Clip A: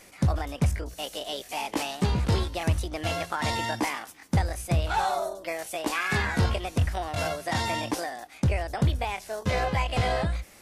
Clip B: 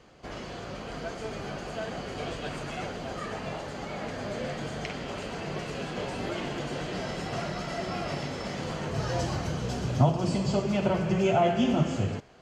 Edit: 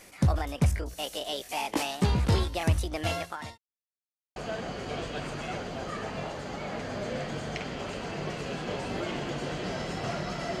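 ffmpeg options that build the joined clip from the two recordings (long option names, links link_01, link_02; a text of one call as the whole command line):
ffmpeg -i cue0.wav -i cue1.wav -filter_complex "[0:a]apad=whole_dur=10.6,atrim=end=10.6,asplit=2[link_01][link_02];[link_01]atrim=end=3.58,asetpts=PTS-STARTPTS,afade=type=out:start_time=3.04:duration=0.54[link_03];[link_02]atrim=start=3.58:end=4.36,asetpts=PTS-STARTPTS,volume=0[link_04];[1:a]atrim=start=1.65:end=7.89,asetpts=PTS-STARTPTS,afade=type=in:duration=0.004:curve=hsin[link_05];[link_03][link_04][link_05]concat=n=3:v=0:a=1" out.wav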